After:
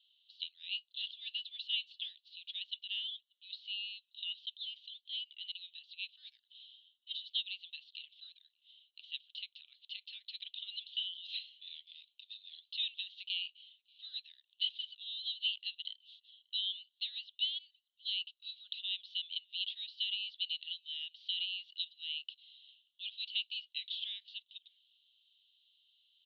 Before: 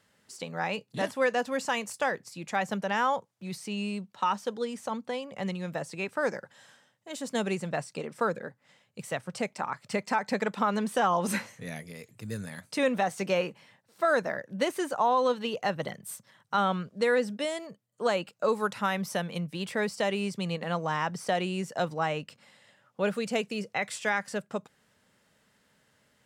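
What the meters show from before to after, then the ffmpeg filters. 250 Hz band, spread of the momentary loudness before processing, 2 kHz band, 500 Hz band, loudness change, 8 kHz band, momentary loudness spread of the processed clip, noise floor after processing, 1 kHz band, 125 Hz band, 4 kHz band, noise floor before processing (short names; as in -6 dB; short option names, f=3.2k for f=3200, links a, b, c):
under -40 dB, 12 LU, -15.5 dB, under -40 dB, -9.0 dB, under -35 dB, 16 LU, -82 dBFS, under -40 dB, under -40 dB, +5.5 dB, -69 dBFS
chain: -filter_complex "[0:a]asuperpass=centerf=3400:order=8:qfactor=3,asplit=2[a][b];[b]adelay=583.1,volume=-29dB,highshelf=f=4k:g=-13.1[c];[a][c]amix=inputs=2:normalize=0,volume=7.5dB"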